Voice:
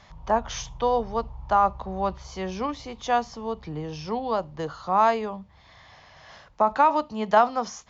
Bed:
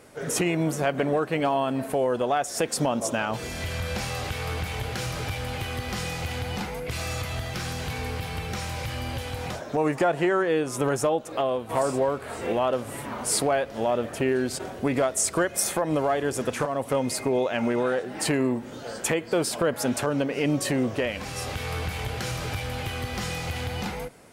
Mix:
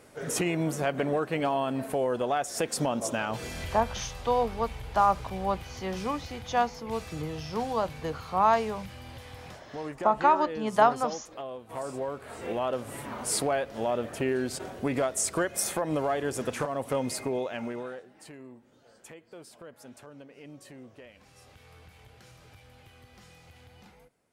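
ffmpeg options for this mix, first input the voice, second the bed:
-filter_complex "[0:a]adelay=3450,volume=-2.5dB[a];[1:a]volume=5.5dB,afade=t=out:st=3.46:d=0.54:silence=0.334965,afade=t=in:st=11.65:d=1.31:silence=0.354813,afade=t=out:st=17.05:d=1.1:silence=0.112202[b];[a][b]amix=inputs=2:normalize=0"

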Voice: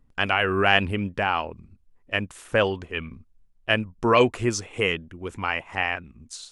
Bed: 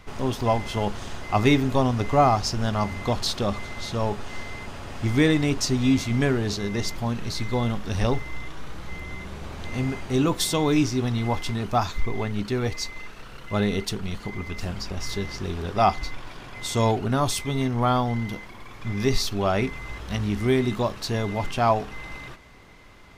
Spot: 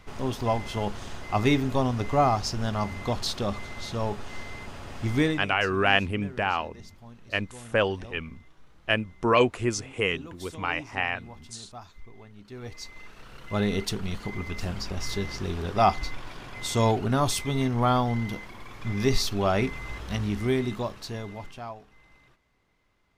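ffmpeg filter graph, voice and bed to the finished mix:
-filter_complex "[0:a]adelay=5200,volume=-2.5dB[a];[1:a]volume=16.5dB,afade=t=out:st=5.21:d=0.27:silence=0.133352,afade=t=in:st=12.42:d=1.43:silence=0.1,afade=t=out:st=19.95:d=1.79:silence=0.105925[b];[a][b]amix=inputs=2:normalize=0"

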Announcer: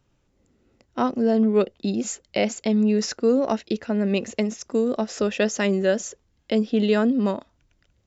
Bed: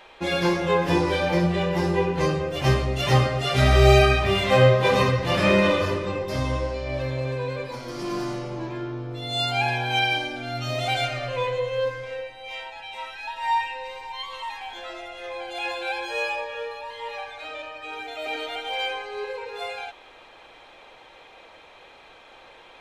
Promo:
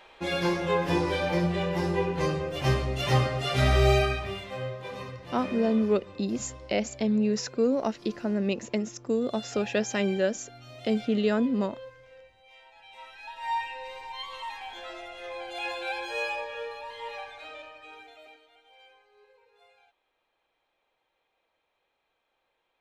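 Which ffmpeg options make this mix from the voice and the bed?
-filter_complex "[0:a]adelay=4350,volume=-5dB[a];[1:a]volume=10.5dB,afade=t=out:st=3.68:d=0.82:silence=0.188365,afade=t=in:st=12.6:d=1.38:silence=0.177828,afade=t=out:st=17.07:d=1.33:silence=0.0595662[b];[a][b]amix=inputs=2:normalize=0"

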